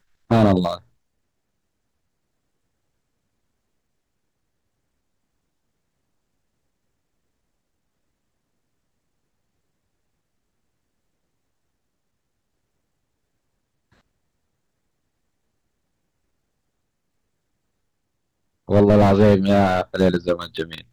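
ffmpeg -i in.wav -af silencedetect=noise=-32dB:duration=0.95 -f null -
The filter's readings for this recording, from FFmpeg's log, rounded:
silence_start: 0.78
silence_end: 18.69 | silence_duration: 17.92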